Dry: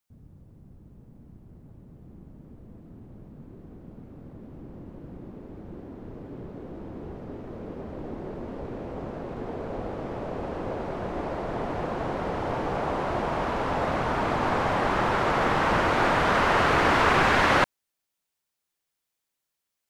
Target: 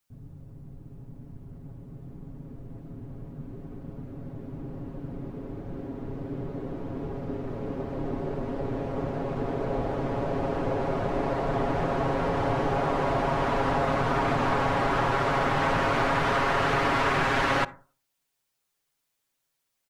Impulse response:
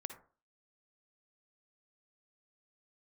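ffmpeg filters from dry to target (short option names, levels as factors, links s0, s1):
-filter_complex "[0:a]aecho=1:1:7.3:0.69,acompressor=threshold=0.0631:ratio=6,asplit=2[s0][s1];[1:a]atrim=start_sample=2205,lowshelf=f=190:g=9[s2];[s1][s2]afir=irnorm=-1:irlink=0,volume=0.447[s3];[s0][s3]amix=inputs=2:normalize=0"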